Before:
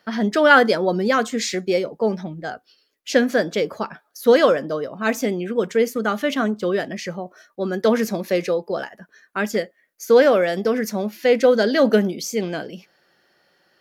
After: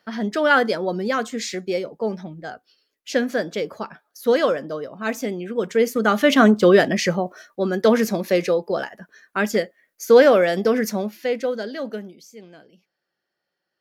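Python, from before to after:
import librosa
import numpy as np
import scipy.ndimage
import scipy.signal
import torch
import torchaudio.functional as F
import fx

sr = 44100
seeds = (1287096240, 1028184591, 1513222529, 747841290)

y = fx.gain(x, sr, db=fx.line((5.47, -4.0), (6.48, 8.5), (7.09, 8.5), (7.7, 1.5), (10.9, 1.5), (11.34, -7.5), (12.32, -19.0)))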